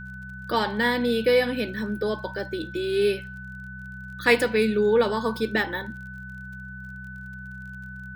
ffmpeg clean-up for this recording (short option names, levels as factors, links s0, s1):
-af "adeclick=t=4,bandreject=f=63.9:t=h:w=4,bandreject=f=127.8:t=h:w=4,bandreject=f=191.7:t=h:w=4,bandreject=f=1500:w=30"